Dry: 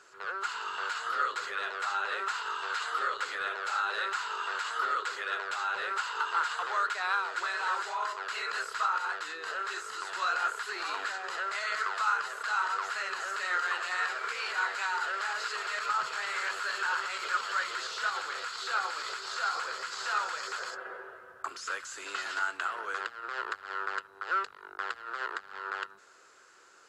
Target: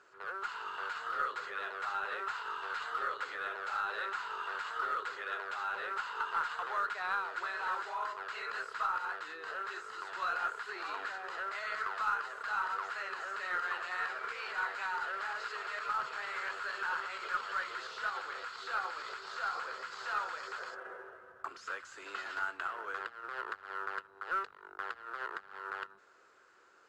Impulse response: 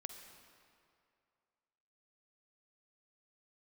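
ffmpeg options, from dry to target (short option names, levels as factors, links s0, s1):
-af "acrusher=bits=5:mode=log:mix=0:aa=0.000001,aeval=exprs='0.119*(cos(1*acos(clip(val(0)/0.119,-1,1)))-cos(1*PI/2))+0.00299*(cos(2*acos(clip(val(0)/0.119,-1,1)))-cos(2*PI/2))':c=same,aemphasis=mode=reproduction:type=75fm,volume=0.631"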